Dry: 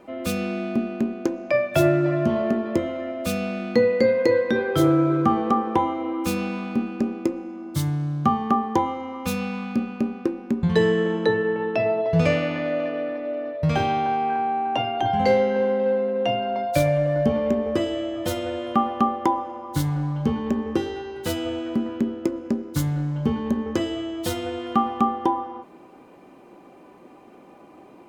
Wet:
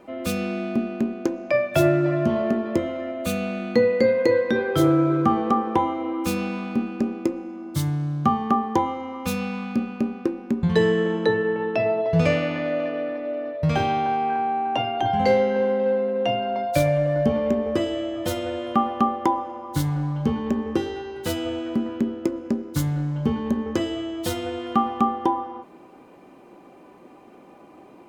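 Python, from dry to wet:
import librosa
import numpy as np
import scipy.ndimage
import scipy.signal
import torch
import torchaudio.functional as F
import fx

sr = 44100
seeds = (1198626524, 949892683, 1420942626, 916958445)

y = fx.notch(x, sr, hz=5200.0, q=8.0, at=(3.11, 4.42))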